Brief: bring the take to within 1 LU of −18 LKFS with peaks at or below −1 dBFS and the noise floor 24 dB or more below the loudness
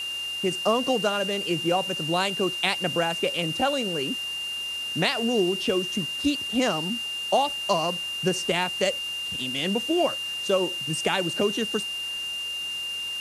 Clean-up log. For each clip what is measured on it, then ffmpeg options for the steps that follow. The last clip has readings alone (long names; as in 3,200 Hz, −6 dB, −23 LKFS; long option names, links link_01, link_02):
interfering tone 2,800 Hz; level of the tone −29 dBFS; background noise floor −32 dBFS; target noise floor −50 dBFS; integrated loudness −25.5 LKFS; sample peak −7.0 dBFS; target loudness −18.0 LKFS
→ -af "bandreject=frequency=2800:width=30"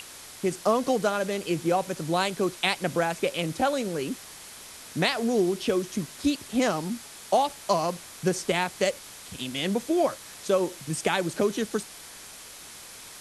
interfering tone none found; background noise floor −45 dBFS; target noise floor −51 dBFS
→ -af "afftdn=noise_reduction=6:noise_floor=-45"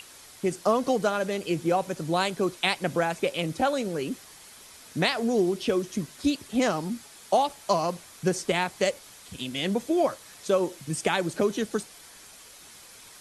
background noise floor −49 dBFS; target noise floor −52 dBFS
→ -af "afftdn=noise_reduction=6:noise_floor=-49"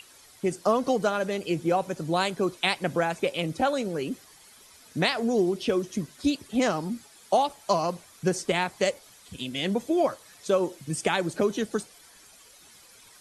background noise floor −54 dBFS; integrated loudness −27.5 LKFS; sample peak −7.5 dBFS; target loudness −18.0 LKFS
→ -af "volume=9.5dB,alimiter=limit=-1dB:level=0:latency=1"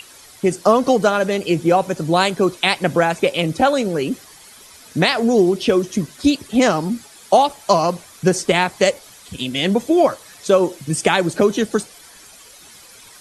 integrated loudness −18.0 LKFS; sample peak −1.0 dBFS; background noise floor −44 dBFS